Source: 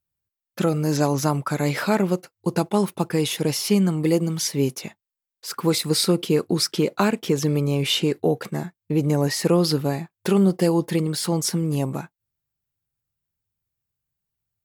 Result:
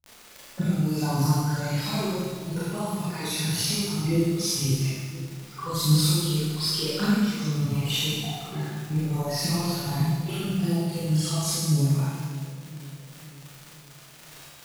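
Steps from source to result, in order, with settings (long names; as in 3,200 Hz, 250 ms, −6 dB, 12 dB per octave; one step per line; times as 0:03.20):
time-frequency cells dropped at random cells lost 27%
low-pass that shuts in the quiet parts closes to 950 Hz, open at −20.5 dBFS
octave-band graphic EQ 250/500/2,000/8,000 Hz −6/−11/−6/−7 dB
harmonic and percussive parts rebalanced percussive −10 dB
high-shelf EQ 4,900 Hz +6.5 dB
downward compressor, threshold −32 dBFS, peak gain reduction 12 dB
phase shifter 1.7 Hz, delay 2.7 ms, feedback 67%
surface crackle 39 per second −32 dBFS
on a send: echo with a time of its own for lows and highs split 680 Hz, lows 513 ms, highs 135 ms, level −14 dB
on the sum: four-comb reverb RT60 1.3 s, combs from 26 ms, DRR −9.5 dB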